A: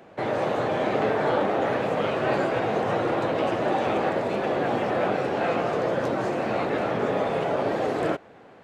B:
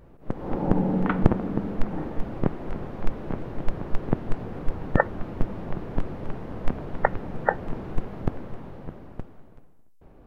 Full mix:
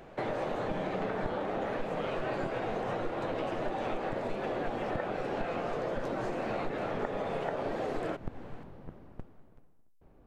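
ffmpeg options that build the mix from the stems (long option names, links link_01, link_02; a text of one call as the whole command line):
ffmpeg -i stem1.wav -i stem2.wav -filter_complex "[0:a]volume=-2dB[link_01];[1:a]volume=-8.5dB[link_02];[link_01][link_02]amix=inputs=2:normalize=0,acompressor=threshold=-31dB:ratio=5" out.wav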